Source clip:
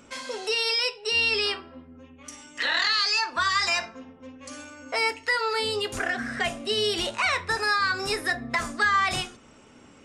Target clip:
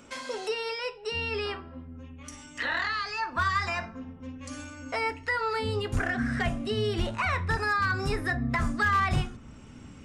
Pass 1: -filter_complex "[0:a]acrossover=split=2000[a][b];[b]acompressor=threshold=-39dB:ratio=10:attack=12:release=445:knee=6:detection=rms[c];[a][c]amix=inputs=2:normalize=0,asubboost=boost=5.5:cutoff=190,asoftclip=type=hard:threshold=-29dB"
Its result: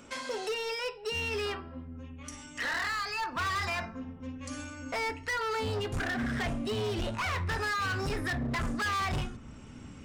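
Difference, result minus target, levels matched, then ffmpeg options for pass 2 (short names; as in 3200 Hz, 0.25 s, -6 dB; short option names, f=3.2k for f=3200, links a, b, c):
hard clip: distortion +17 dB
-filter_complex "[0:a]acrossover=split=2000[a][b];[b]acompressor=threshold=-39dB:ratio=10:attack=12:release=445:knee=6:detection=rms[c];[a][c]amix=inputs=2:normalize=0,asubboost=boost=5.5:cutoff=190,asoftclip=type=hard:threshold=-19dB"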